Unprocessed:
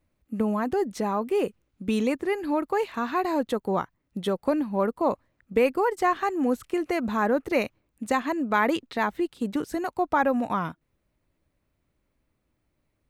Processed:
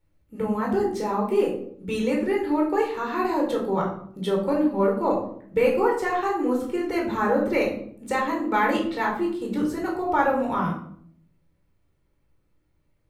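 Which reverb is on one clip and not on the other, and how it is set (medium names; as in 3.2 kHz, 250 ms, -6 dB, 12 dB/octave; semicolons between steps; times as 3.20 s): simulated room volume 860 m³, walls furnished, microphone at 4.4 m; trim -4.5 dB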